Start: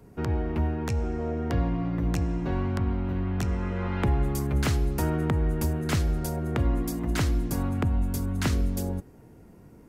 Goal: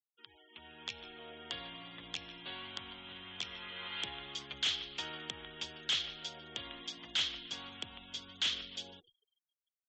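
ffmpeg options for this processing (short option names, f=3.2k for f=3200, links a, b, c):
-filter_complex "[0:a]bandpass=f=3.3k:t=q:w=9.5:csg=0,asplit=2[a][b];[b]asplit=3[c][d][e];[c]adelay=149,afreqshift=-77,volume=-17.5dB[f];[d]adelay=298,afreqshift=-154,volume=-26.1dB[g];[e]adelay=447,afreqshift=-231,volume=-34.8dB[h];[f][g][h]amix=inputs=3:normalize=0[i];[a][i]amix=inputs=2:normalize=0,dynaudnorm=f=480:g=3:m=15.5dB,afftfilt=real='re*gte(hypot(re,im),0.00158)':imag='im*gte(hypot(re,im),0.00158)':win_size=1024:overlap=0.75,aresample=16000,volume=28.5dB,asoftclip=hard,volume=-28.5dB,aresample=44100,volume=1dB"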